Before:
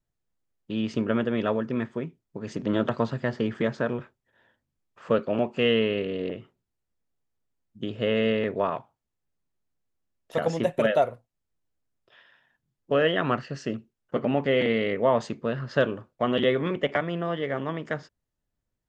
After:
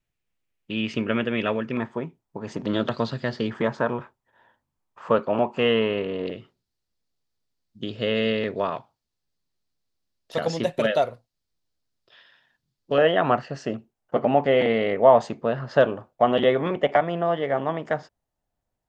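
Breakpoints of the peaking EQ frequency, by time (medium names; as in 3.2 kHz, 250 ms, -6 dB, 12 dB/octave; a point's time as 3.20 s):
peaking EQ +11.5 dB 0.84 oct
2.5 kHz
from 1.77 s 870 Hz
from 2.66 s 4.3 kHz
from 3.50 s 940 Hz
from 6.27 s 4.5 kHz
from 12.98 s 750 Hz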